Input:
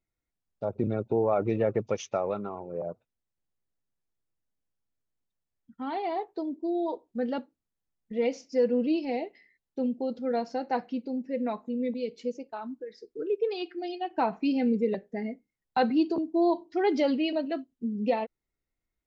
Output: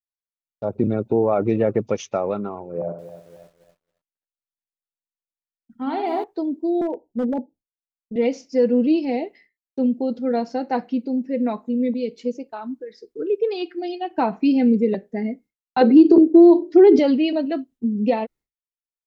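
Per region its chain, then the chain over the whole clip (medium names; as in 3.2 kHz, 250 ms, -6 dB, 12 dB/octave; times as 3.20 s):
2.71–6.24 s: flutter echo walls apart 11 m, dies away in 0.52 s + bit-crushed delay 274 ms, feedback 55%, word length 9-bit, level -11.5 dB
6.81–8.16 s: steep low-pass 900 Hz 96 dB/octave + hard clipper -25.5 dBFS
15.81–16.99 s: peaking EQ 380 Hz +14.5 dB 0.76 oct + hum notches 60/120/180/240/300/360/420/480/540/600 Hz + compression, threshold -14 dBFS
whole clip: expander -51 dBFS; dynamic bell 250 Hz, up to +5 dB, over -39 dBFS, Q 1; trim +4.5 dB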